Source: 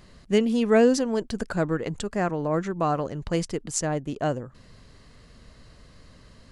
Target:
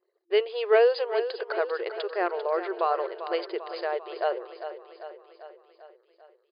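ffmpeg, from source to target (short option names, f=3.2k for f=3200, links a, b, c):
-af "anlmdn=0.0251,afftfilt=real='re*between(b*sr/4096,340,5000)':imag='im*between(b*sr/4096,340,5000)':win_size=4096:overlap=0.75,aecho=1:1:395|790|1185|1580|1975|2370|2765:0.282|0.166|0.0981|0.0579|0.0342|0.0201|0.0119"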